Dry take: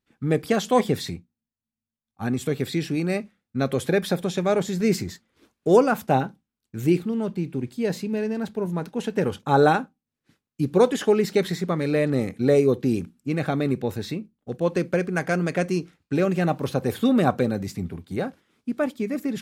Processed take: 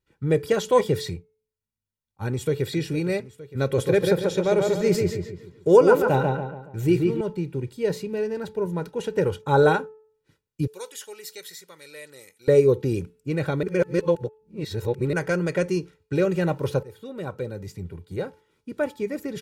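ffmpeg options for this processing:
ffmpeg -i in.wav -filter_complex "[0:a]asplit=2[link_01][link_02];[link_02]afade=type=in:start_time=2.27:duration=0.01,afade=type=out:start_time=2.73:duration=0.01,aecho=0:1:460|920|1380|1840|2300|2760|3220:0.199526|0.129692|0.0842998|0.0547949|0.0356167|0.0231508|0.015048[link_03];[link_01][link_03]amix=inputs=2:normalize=0,asettb=1/sr,asplit=3[link_04][link_05][link_06];[link_04]atrim=end=3.644[link_07];[link_05]atrim=start=3.64:end=7.21,asetpts=PTS-STARTPTS,afade=type=in:duration=0.004:curve=qsin,afade=type=out:start_time=3.566:duration=0.004:curve=qsin,asplit=2[link_08][link_09];[link_09]adelay=141,lowpass=frequency=3100:poles=1,volume=-3dB,asplit=2[link_10][link_11];[link_11]adelay=141,lowpass=frequency=3100:poles=1,volume=0.42,asplit=2[link_12][link_13];[link_13]adelay=141,lowpass=frequency=3100:poles=1,volume=0.42,asplit=2[link_14][link_15];[link_15]adelay=141,lowpass=frequency=3100:poles=1,volume=0.42,asplit=2[link_16][link_17];[link_17]adelay=141,lowpass=frequency=3100:poles=1,volume=0.42[link_18];[link_08][link_10][link_12][link_14][link_16][link_18]amix=inputs=6:normalize=0,atrim=end_sample=157437[link_19];[link_06]atrim=start=7.206[link_20];[link_07][link_19]acrossfade=duration=0.004:curve1=hsin:curve2=qsin[link_21];[link_21][link_20]acrossfade=duration=0.004:curve1=qsin:curve2=hsin,asettb=1/sr,asplit=3[link_22][link_23][link_24];[link_22]atrim=end=10.674[link_25];[link_23]atrim=start=10.67:end=12.48,asetpts=PTS-STARTPTS,afade=type=in:duration=0.004:curve=qsin,afade=type=out:start_time=1.806:duration=0.004:curve=qsin,aderivative[link_26];[link_24]atrim=start=12.476[link_27];[link_25][link_26]acrossfade=duration=0.004:curve1=hsin:curve2=qsin[link_28];[link_28][link_27]acrossfade=duration=0.004:curve1=qsin:curve2=hsin,asplit=4[link_29][link_30][link_31][link_32];[link_29]atrim=end=13.632[link_33];[link_30]atrim=start=13.628:end=15.132,asetpts=PTS-STARTPTS,areverse[link_34];[link_31]atrim=start=15.128:end=16.83,asetpts=PTS-STARTPTS,afade=type=out:start_time=1.698:duration=0.004:curve=hsin:silence=0.0891251[link_35];[link_32]atrim=start=16.83,asetpts=PTS-STARTPTS,afade=type=in:duration=1.97:silence=0.0891251[link_36];[link_33][link_34]acrossfade=duration=0.004:curve1=hsin:curve2=hsin[link_37];[link_35][link_36]concat=n=2:v=0:a=1[link_38];[link_37][link_38]acrossfade=duration=0.004:curve1=hsin:curve2=hsin,lowshelf=frequency=330:gain=5,aecho=1:1:2.1:0.67,bandreject=frequency=434.3:width_type=h:width=4,bandreject=frequency=868.6:width_type=h:width=4,bandreject=frequency=1302.9:width_type=h:width=4,bandreject=frequency=1737.2:width_type=h:width=4,bandreject=frequency=2171.5:width_type=h:width=4,bandreject=frequency=2605.8:width_type=h:width=4,volume=-3dB" out.wav

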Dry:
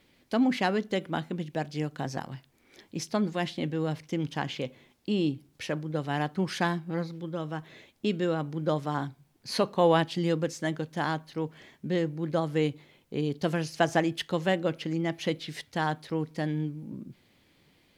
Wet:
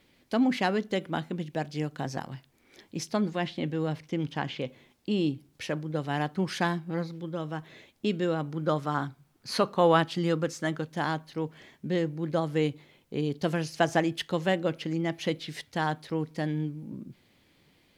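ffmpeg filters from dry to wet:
ffmpeg -i in.wav -filter_complex "[0:a]asettb=1/sr,asplit=3[link_01][link_02][link_03];[link_01]atrim=end=3.214[link_04];[link_02]atrim=start=3.21:end=5.11,asetpts=PTS-STARTPTS,afade=type=in:duration=0.004:curve=qsin,afade=type=out:start_time=1.896:duration=0.004:curve=qsin,acrossover=split=4500[link_05][link_06];[link_06]acompressor=threshold=-58dB:ratio=4:attack=1:release=60[link_07];[link_05][link_07]amix=inputs=2:normalize=0[link_08];[link_03]atrim=start=5.106[link_09];[link_04][link_08]acrossfade=duration=0.004:curve1=hsin:curve2=qsin[link_10];[link_10][link_09]acrossfade=duration=0.004:curve1=qsin:curve2=hsin,asettb=1/sr,asplit=3[link_11][link_12][link_13];[link_11]atrim=end=8.524[link_14];[link_12]atrim=start=8.52:end=10.86,asetpts=PTS-STARTPTS,afade=type=in:duration=0.004:curve=qsin,afade=type=out:start_time=2.336:duration=0.004:curve=qsin,equalizer=frequency=1300:width_type=o:width=0.39:gain=7.5[link_15];[link_13]atrim=start=10.856[link_16];[link_14][link_15]acrossfade=duration=0.004:curve1=hsin:curve2=qsin[link_17];[link_17][link_16]acrossfade=duration=0.004:curve1=qsin:curve2=hsin" out.wav

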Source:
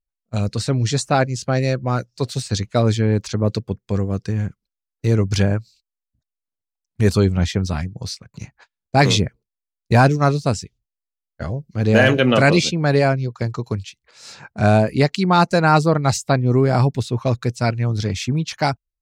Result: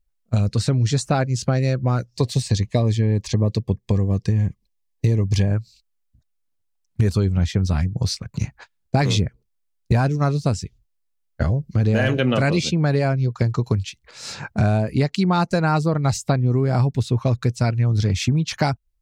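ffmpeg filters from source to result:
ffmpeg -i in.wav -filter_complex "[0:a]asettb=1/sr,asplit=3[link_01][link_02][link_03];[link_01]atrim=end=2.124[link_04];[link_02]atrim=start=2.12:end=5.48,asetpts=PTS-STARTPTS,afade=type=in:duration=0.004:curve=qsin,afade=type=out:start_time=3.356:duration=0.004:curve=qsin,asuperstop=centerf=1400:order=8:qfactor=3.4[link_05];[link_03]atrim=start=5.476[link_06];[link_04][link_05]acrossfade=duration=0.004:curve1=hsin:curve2=qsin[link_07];[link_07][link_06]acrossfade=duration=0.004:curve1=qsin:curve2=hsin,lowshelf=frequency=150:gain=9.5,acompressor=threshold=-23dB:ratio=5,volume=6dB" out.wav

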